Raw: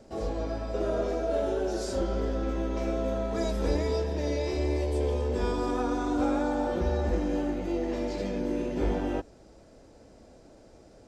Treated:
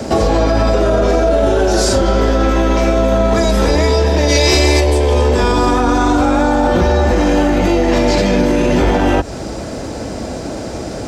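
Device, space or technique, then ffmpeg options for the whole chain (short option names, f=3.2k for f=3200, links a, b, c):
mastering chain: -filter_complex "[0:a]highpass=57,equalizer=f=480:t=o:w=0.9:g=-3.5,acrossover=split=170|470[a][b][c];[a]acompressor=threshold=-38dB:ratio=4[d];[b]acompressor=threshold=-45dB:ratio=4[e];[c]acompressor=threshold=-38dB:ratio=4[f];[d][e][f]amix=inputs=3:normalize=0,acompressor=threshold=-40dB:ratio=2,asoftclip=type=tanh:threshold=-27dB,asoftclip=type=hard:threshold=-32.5dB,alimiter=level_in=35.5dB:limit=-1dB:release=50:level=0:latency=1,asplit=3[g][h][i];[g]afade=t=out:st=4.28:d=0.02[j];[h]highshelf=f=2.5k:g=11,afade=t=in:st=4.28:d=0.02,afade=t=out:st=4.79:d=0.02[k];[i]afade=t=in:st=4.79:d=0.02[l];[j][k][l]amix=inputs=3:normalize=0,volume=-4dB"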